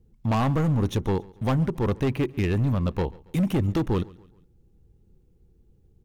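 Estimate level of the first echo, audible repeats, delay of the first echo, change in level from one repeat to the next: −23.0 dB, 2, 139 ms, −7.0 dB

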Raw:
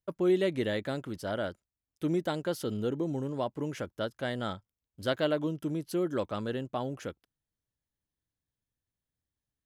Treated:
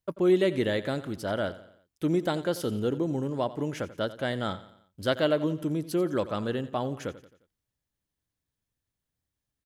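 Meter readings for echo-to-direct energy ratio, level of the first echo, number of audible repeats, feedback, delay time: −15.0 dB, −16.0 dB, 3, 48%, 88 ms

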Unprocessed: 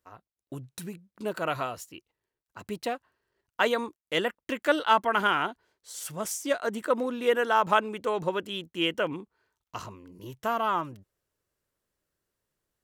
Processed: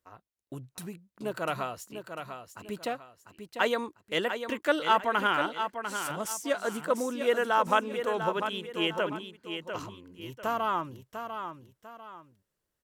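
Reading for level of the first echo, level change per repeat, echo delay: −8.0 dB, −9.5 dB, 697 ms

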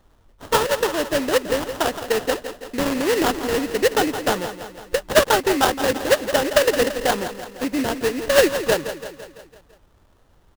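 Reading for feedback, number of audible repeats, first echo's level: 57%, 5, −11.0 dB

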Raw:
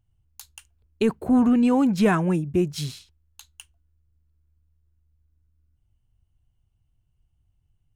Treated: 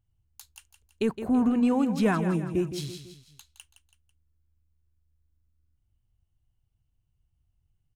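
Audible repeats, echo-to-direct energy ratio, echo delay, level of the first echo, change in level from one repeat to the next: 3, −9.5 dB, 165 ms, −10.5 dB, −6.5 dB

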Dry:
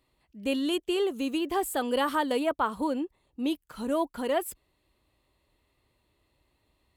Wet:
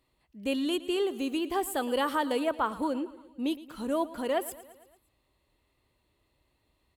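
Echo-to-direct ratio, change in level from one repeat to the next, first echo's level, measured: −15.5 dB, −4.5 dB, −17.5 dB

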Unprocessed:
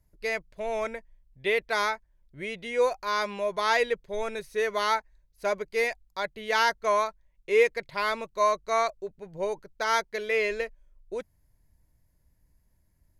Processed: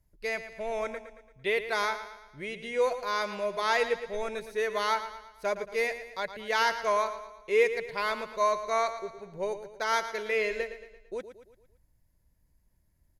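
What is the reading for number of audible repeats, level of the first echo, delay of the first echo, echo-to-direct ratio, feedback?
4, −11.5 dB, 113 ms, −10.5 dB, 48%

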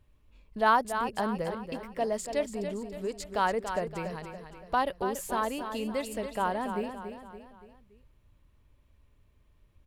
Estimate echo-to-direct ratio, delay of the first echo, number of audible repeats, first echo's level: −7.5 dB, 284 ms, 4, −8.5 dB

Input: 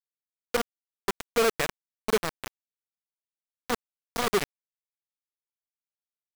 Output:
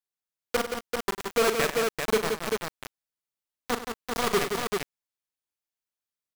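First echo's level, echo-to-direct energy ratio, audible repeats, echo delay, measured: −10.0 dB, −1.0 dB, 4, 41 ms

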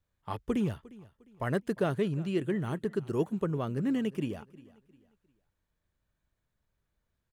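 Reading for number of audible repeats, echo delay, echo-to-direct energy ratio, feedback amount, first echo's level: 2, 354 ms, −20.5 dB, 34%, −21.0 dB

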